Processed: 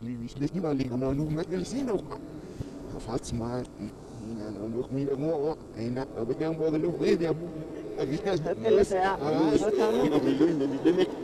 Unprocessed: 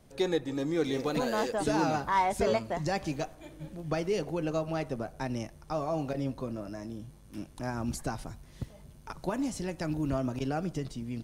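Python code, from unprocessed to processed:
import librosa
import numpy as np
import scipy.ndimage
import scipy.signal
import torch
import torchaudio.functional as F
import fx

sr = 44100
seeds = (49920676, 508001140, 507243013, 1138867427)

p1 = np.flip(x).copy()
p2 = fx.peak_eq(p1, sr, hz=440.0, db=12.0, octaves=0.67)
p3 = p2 + fx.echo_diffused(p2, sr, ms=975, feedback_pct=56, wet_db=-14.0, dry=0)
p4 = fx.formant_shift(p3, sr, semitones=-3)
p5 = np.clip(p4, -10.0 ** (-26.0 / 20.0), 10.0 ** (-26.0 / 20.0))
p6 = p4 + (p5 * 10.0 ** (-10.0 / 20.0))
p7 = fx.dmg_buzz(p6, sr, base_hz=100.0, harmonics=14, level_db=-55.0, tilt_db=-3, odd_only=False)
y = p7 * 10.0 ** (-2.5 / 20.0)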